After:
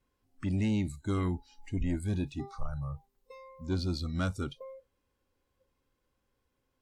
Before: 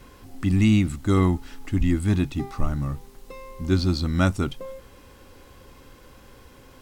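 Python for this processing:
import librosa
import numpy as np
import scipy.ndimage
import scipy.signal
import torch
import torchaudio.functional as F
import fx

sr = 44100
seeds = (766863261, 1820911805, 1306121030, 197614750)

y = 10.0 ** (-15.5 / 20.0) * np.tanh(x / 10.0 ** (-15.5 / 20.0))
y = fx.noise_reduce_blind(y, sr, reduce_db=22)
y = y * librosa.db_to_amplitude(-8.0)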